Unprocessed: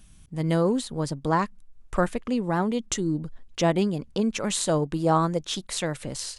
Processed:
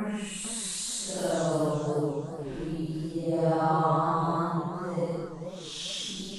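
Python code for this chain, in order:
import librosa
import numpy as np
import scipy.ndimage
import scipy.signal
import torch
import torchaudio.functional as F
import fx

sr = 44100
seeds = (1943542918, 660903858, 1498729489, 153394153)

y = fx.spec_box(x, sr, start_s=3.53, length_s=1.04, low_hz=3000.0, high_hz=7500.0, gain_db=-10)
y = fx.paulstretch(y, sr, seeds[0], factor=5.6, window_s=0.1, from_s=4.46)
y = fx.echo_warbled(y, sr, ms=436, feedback_pct=34, rate_hz=2.8, cents=175, wet_db=-9)
y = y * 10.0 ** (-6.0 / 20.0)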